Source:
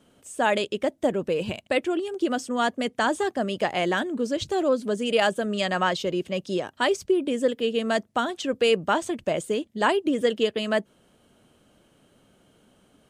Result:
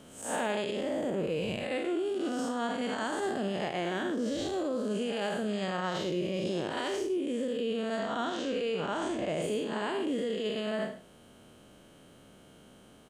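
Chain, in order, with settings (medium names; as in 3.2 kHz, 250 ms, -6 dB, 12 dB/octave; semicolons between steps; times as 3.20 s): spectral blur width 181 ms; 7.99–9.42 s: low-pass 7.1 kHz 12 dB/octave; in parallel at -2.5 dB: compression, threshold -41 dBFS, peak gain reduction 17.5 dB; on the sum: peak limiter -24 dBFS, peak gain reduction 10.5 dB; gain riding 0.5 s; overload inside the chain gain 23.5 dB; echo from a far wall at 18 m, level -15 dB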